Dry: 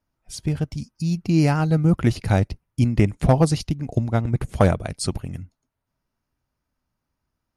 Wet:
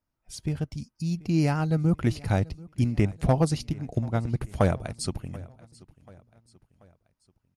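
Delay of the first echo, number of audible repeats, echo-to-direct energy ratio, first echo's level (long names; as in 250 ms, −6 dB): 735 ms, 3, −21.0 dB, −22.0 dB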